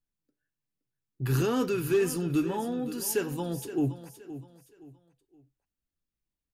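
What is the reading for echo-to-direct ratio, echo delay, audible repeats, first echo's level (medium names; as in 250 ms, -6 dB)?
-13.0 dB, 520 ms, 3, -13.5 dB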